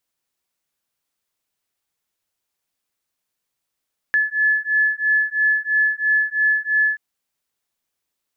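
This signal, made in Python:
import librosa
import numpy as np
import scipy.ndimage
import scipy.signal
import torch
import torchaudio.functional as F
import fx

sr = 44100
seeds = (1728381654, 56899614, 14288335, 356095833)

y = fx.two_tone_beats(sr, length_s=2.83, hz=1720.0, beat_hz=3.0, level_db=-19.0)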